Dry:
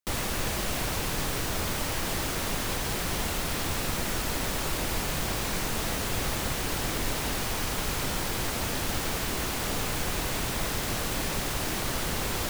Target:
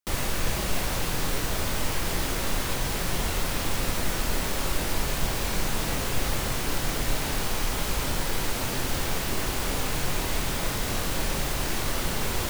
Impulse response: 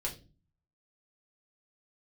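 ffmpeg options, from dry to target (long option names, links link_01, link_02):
-filter_complex "[0:a]asplit=2[link_01][link_02];[1:a]atrim=start_sample=2205,adelay=23[link_03];[link_02][link_03]afir=irnorm=-1:irlink=0,volume=-8dB[link_04];[link_01][link_04]amix=inputs=2:normalize=0"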